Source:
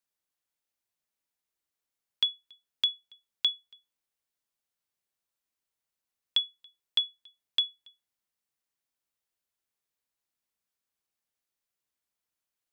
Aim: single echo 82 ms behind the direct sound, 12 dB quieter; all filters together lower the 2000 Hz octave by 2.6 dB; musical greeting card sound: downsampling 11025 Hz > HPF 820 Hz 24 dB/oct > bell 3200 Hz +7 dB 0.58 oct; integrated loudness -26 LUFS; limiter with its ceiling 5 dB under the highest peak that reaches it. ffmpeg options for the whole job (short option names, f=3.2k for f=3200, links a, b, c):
-af "equalizer=f=2k:t=o:g=-7.5,alimiter=limit=-22dB:level=0:latency=1,aecho=1:1:82:0.251,aresample=11025,aresample=44100,highpass=f=820:w=0.5412,highpass=f=820:w=1.3066,equalizer=f=3.2k:t=o:w=0.58:g=7,volume=3dB"